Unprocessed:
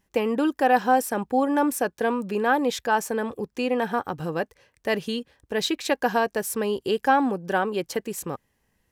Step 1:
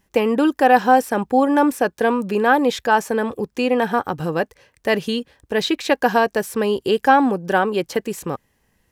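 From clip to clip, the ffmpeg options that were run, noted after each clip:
-filter_complex "[0:a]acrossover=split=4200[a][b];[b]acompressor=threshold=-38dB:ratio=4:attack=1:release=60[c];[a][c]amix=inputs=2:normalize=0,volume=6dB"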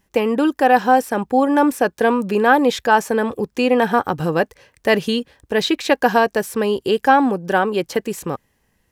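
-af "dynaudnorm=f=110:g=13:m=4dB"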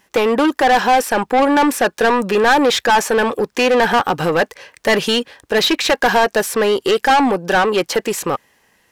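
-filter_complex "[0:a]asplit=2[a][b];[b]highpass=f=720:p=1,volume=23dB,asoftclip=type=tanh:threshold=-1dB[c];[a][c]amix=inputs=2:normalize=0,lowpass=f=6.4k:p=1,volume=-6dB,volume=-4.5dB"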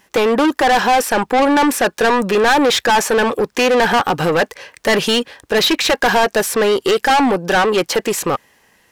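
-af "asoftclip=type=tanh:threshold=-12dB,volume=3dB"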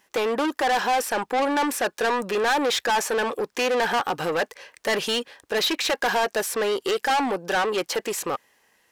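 -af "bass=f=250:g=-8,treble=f=4k:g=1,volume=-8.5dB"

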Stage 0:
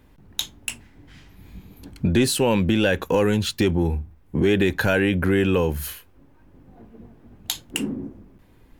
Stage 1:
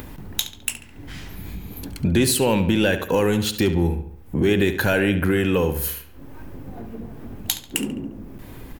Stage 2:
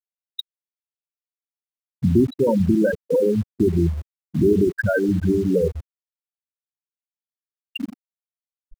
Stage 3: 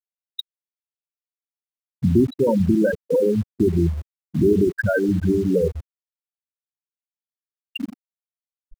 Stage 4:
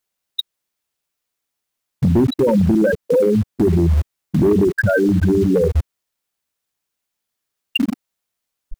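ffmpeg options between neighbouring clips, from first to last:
-filter_complex "[0:a]highshelf=f=11k:g=11.5,acompressor=mode=upward:threshold=-24dB:ratio=2.5,asplit=2[a][b];[b]adelay=70,lowpass=f=4.6k:p=1,volume=-10.5dB,asplit=2[c][d];[d]adelay=70,lowpass=f=4.6k:p=1,volume=0.5,asplit=2[e][f];[f]adelay=70,lowpass=f=4.6k:p=1,volume=0.5,asplit=2[g][h];[h]adelay=70,lowpass=f=4.6k:p=1,volume=0.5,asplit=2[i][j];[j]adelay=70,lowpass=f=4.6k:p=1,volume=0.5[k];[c][e][g][i][k]amix=inputs=5:normalize=0[l];[a][l]amix=inputs=2:normalize=0"
-filter_complex "[0:a]afftfilt=real='re*gte(hypot(re,im),0.501)':imag='im*gte(hypot(re,im),0.501)':win_size=1024:overlap=0.75,asplit=2[a][b];[b]acrusher=bits=5:mix=0:aa=0.000001,volume=-8dB[c];[a][c]amix=inputs=2:normalize=0"
-af anull
-filter_complex "[0:a]asplit=2[a][b];[b]acompressor=threshold=-25dB:ratio=10,volume=1dB[c];[a][c]amix=inputs=2:normalize=0,volume=10dB,asoftclip=hard,volume=-10dB,alimiter=level_in=18.5dB:limit=-1dB:release=50:level=0:latency=1,volume=-8.5dB"

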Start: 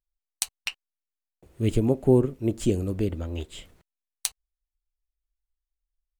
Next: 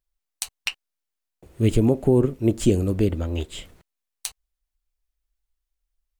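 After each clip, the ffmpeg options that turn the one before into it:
-af "alimiter=limit=-13dB:level=0:latency=1:release=41,volume=5.5dB"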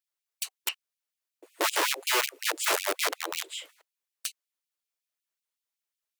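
-af "aeval=exprs='(mod(8.91*val(0)+1,2)-1)/8.91':c=same,bandreject=f=760:w=12,afftfilt=real='re*gte(b*sr/1024,280*pow(2300/280,0.5+0.5*sin(2*PI*5.4*pts/sr)))':imag='im*gte(b*sr/1024,280*pow(2300/280,0.5+0.5*sin(2*PI*5.4*pts/sr)))':win_size=1024:overlap=0.75"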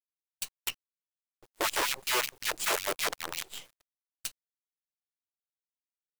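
-af "acrusher=bits=6:dc=4:mix=0:aa=0.000001,volume=-3dB"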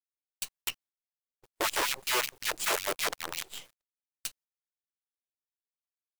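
-af "agate=range=-22dB:threshold=-57dB:ratio=16:detection=peak"

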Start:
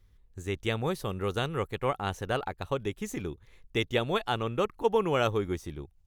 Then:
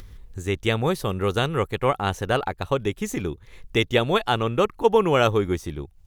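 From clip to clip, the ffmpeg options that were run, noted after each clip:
-af "acompressor=mode=upward:threshold=-39dB:ratio=2.5,volume=7.5dB"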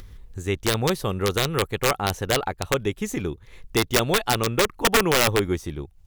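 -af "aeval=exprs='(mod(3.55*val(0)+1,2)-1)/3.55':c=same"

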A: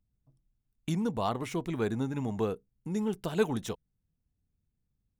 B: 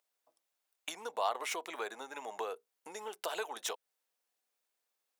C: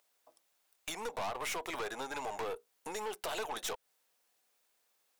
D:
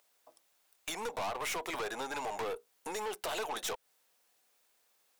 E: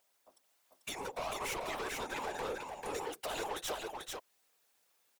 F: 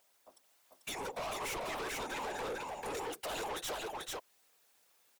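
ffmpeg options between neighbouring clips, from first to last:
-af "acompressor=threshold=-37dB:ratio=6,highpass=f=560:w=0.5412,highpass=f=560:w=1.3066,volume=9.5dB"
-af "acompressor=threshold=-40dB:ratio=2,aeval=exprs='(tanh(158*val(0)+0.35)-tanh(0.35))/158':c=same,volume=10dB"
-af "asoftclip=type=tanh:threshold=-34dB,volume=3.5dB"
-af "afftfilt=real='hypot(re,im)*cos(2*PI*random(0))':imag='hypot(re,im)*sin(2*PI*random(1))':win_size=512:overlap=0.75,aecho=1:1:442:0.668,volume=3dB"
-af "asoftclip=type=tanh:threshold=-39dB,volume=4dB"

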